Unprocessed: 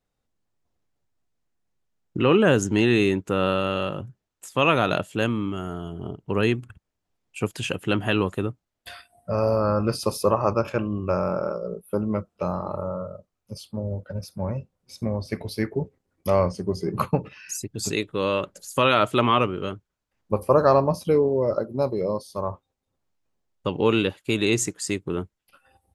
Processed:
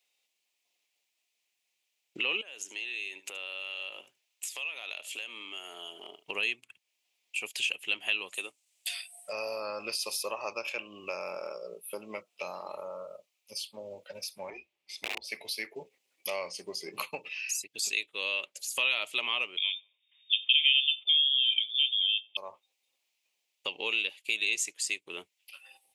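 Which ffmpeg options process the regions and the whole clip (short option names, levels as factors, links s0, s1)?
-filter_complex "[0:a]asettb=1/sr,asplit=3[s0][s1][s2];[s0]atrim=end=2.414[s3];[s1]atrim=start=2.41:end=6.28,asetpts=PTS-STARTPTS,afade=t=in:d=0.004:c=qsin,afade=t=out:st=3.866:d=0.004:c=qsin,highpass=320,acompressor=threshold=0.0178:ratio=8:attack=3.2:release=140:knee=1:detection=peak,aecho=1:1:74:0.141,atrim=end_sample=170667[s4];[s2]atrim=start=6.276[s5];[s3][s4]acrossfade=d=0.004:c1=hsin:c2=qsin[s6];[s6][s5]acrossfade=d=0.004:c1=qsin:c2=hsin,asettb=1/sr,asplit=3[s7][s8][s9];[s7]atrim=end=8.344[s10];[s8]atrim=start=8.34:end=9.33,asetpts=PTS-STARTPTS,afade=t=in:d=0.004:c=qsin,afade=t=out:st=0.986:d=0.004:c=qsin,highpass=270,equalizer=f=8200:t=o:w=1.1:g=14.5[s11];[s9]atrim=start=9.326[s12];[s10][s11]acrossfade=d=0.004:c1=hsin:c2=qsin[s13];[s13][s12]acrossfade=d=0.004:c1=qsin:c2=hsin,asettb=1/sr,asplit=3[s14][s15][s16];[s14]atrim=end=14.504[s17];[s15]atrim=start=14.5:end=15.24,asetpts=PTS-STARTPTS,afade=t=in:d=0.004:c=qsin,afade=t=out:st=0.736:d=0.004:c=qsin,afreqshift=-170,aeval=exprs='(mod(10*val(0)+1,2)-1)/10':c=same,bass=f=250:g=2,treble=f=4000:g=-13[s18];[s16]atrim=start=15.236[s19];[s17][s18]acrossfade=d=0.004:c1=hsin:c2=qsin[s20];[s20][s19]acrossfade=d=0.004:c1=qsin:c2=hsin,asettb=1/sr,asplit=3[s21][s22][s23];[s21]atrim=end=19.574[s24];[s22]atrim=start=19.57:end=22.37,asetpts=PTS-STARTPTS,afade=t=in:d=0.004:c=qsin,afade=t=out:st=2.796:d=0.004:c=qsin,lowpass=f=3100:t=q:w=0.5098,lowpass=f=3100:t=q:w=0.6013,lowpass=f=3100:t=q:w=0.9,lowpass=f=3100:t=q:w=2.563,afreqshift=-3700,asplit=2[s25][s26];[s26]adelay=91,lowpass=f=1200:p=1,volume=0.0794,asplit=2[s27][s28];[s28]adelay=91,lowpass=f=1200:p=1,volume=0.44,asplit=2[s29][s30];[s30]adelay=91,lowpass=f=1200:p=1,volume=0.44[s31];[s25][s27][s29][s31]amix=inputs=4:normalize=0,atrim=end_sample=123480[s32];[s23]atrim=start=22.366[s33];[s24][s32]acrossfade=d=0.004:c1=hsin:c2=qsin[s34];[s34][s33]acrossfade=d=0.004:c1=qsin:c2=hsin,highpass=680,highshelf=f=1900:t=q:w=3:g=9,acompressor=threshold=0.0112:ratio=2"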